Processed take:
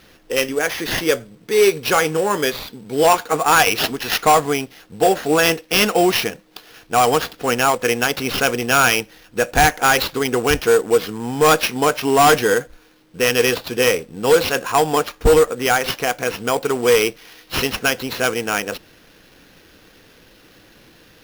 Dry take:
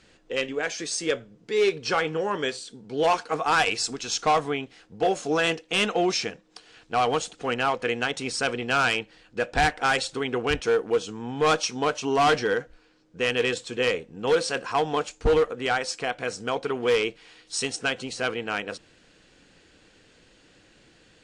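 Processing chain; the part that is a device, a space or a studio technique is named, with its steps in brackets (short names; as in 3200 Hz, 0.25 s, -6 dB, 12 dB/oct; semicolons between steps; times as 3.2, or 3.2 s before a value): early companding sampler (sample-rate reducer 8200 Hz, jitter 0%; companded quantiser 6-bit); gain +8 dB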